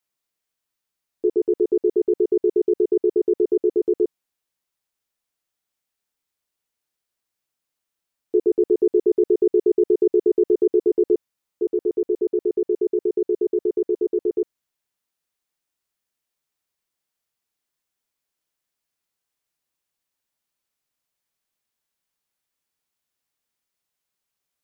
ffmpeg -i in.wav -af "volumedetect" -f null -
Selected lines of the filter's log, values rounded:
mean_volume: -24.9 dB
max_volume: -9.3 dB